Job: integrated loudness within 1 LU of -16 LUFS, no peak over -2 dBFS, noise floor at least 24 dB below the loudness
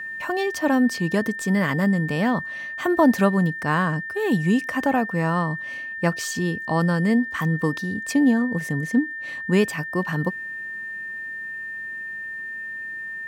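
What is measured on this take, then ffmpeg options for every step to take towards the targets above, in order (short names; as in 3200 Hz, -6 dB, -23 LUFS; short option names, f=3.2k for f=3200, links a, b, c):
steady tone 1800 Hz; tone level -30 dBFS; loudness -23.5 LUFS; peak -6.0 dBFS; loudness target -16.0 LUFS
-> -af "bandreject=f=1.8k:w=30"
-af "volume=7.5dB,alimiter=limit=-2dB:level=0:latency=1"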